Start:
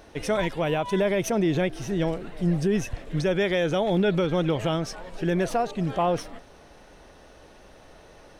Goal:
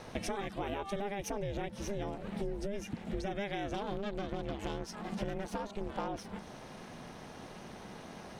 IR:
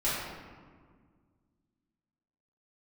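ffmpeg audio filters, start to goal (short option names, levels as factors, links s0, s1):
-filter_complex "[0:a]asettb=1/sr,asplit=3[s0][s1][s2];[s0]atrim=end=3.744[s3];[s1]atrim=start=3.74:end=6.08,asetpts=PTS-STARTPTS,afade=t=in:d=0.004:c=qsin,afade=t=out:st=2.336:d=0.004:c=qsin,aeval=exprs='0.178*(cos(1*acos(clip(val(0)/0.178,-1,1)))-cos(1*PI/2))+0.0316*(cos(4*acos(clip(val(0)/0.178,-1,1)))-cos(4*PI/2))':c=same[s4];[s2]atrim=start=6.076[s5];[s3][s4]acrossfade=d=0.004:c1=hsin:c2=qsin[s6];[s6][s5]acrossfade=d=0.004:c1=qsin:c2=hsin,aeval=exprs='val(0)*sin(2*PI*200*n/s)':c=same,acompressor=threshold=0.0112:ratio=8,volume=1.78"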